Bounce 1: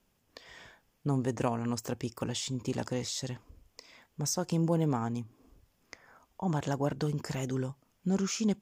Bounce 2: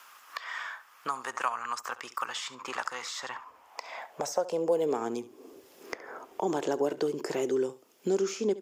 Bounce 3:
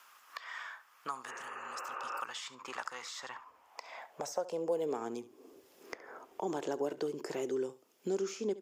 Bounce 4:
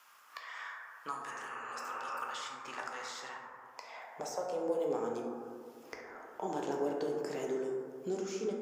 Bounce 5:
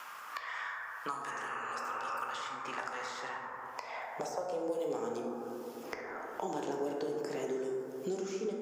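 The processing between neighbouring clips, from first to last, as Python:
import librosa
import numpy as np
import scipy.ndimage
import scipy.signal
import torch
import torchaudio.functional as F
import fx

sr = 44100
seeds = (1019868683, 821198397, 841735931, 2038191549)

y1 = fx.room_flutter(x, sr, wall_m=11.9, rt60_s=0.24)
y1 = fx.filter_sweep_highpass(y1, sr, from_hz=1200.0, to_hz=380.0, start_s=3.17, end_s=5.07, q=3.9)
y1 = fx.band_squash(y1, sr, depth_pct=70)
y2 = fx.spec_repair(y1, sr, seeds[0], start_s=1.29, length_s=0.89, low_hz=260.0, high_hz=2900.0, source='both')
y2 = F.gain(torch.from_numpy(y2), -6.5).numpy()
y3 = fx.rev_plate(y2, sr, seeds[1], rt60_s=2.2, hf_ratio=0.25, predelay_ms=0, drr_db=-1.0)
y3 = F.gain(torch.from_numpy(y3), -3.0).numpy()
y4 = fx.band_squash(y3, sr, depth_pct=70)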